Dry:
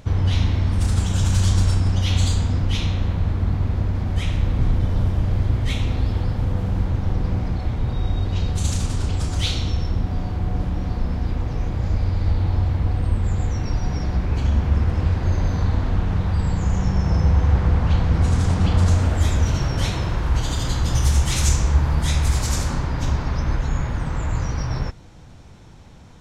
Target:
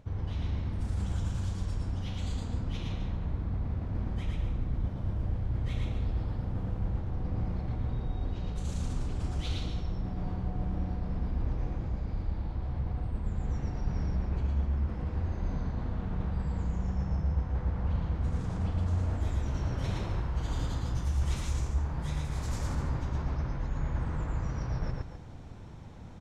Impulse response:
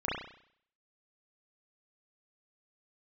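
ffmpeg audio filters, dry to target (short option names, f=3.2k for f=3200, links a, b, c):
-af "highshelf=f=2.2k:g=-9.5,areverse,acompressor=threshold=-27dB:ratio=6,areverse,aecho=1:1:113.7|256.6:0.794|0.282,volume=-3.5dB"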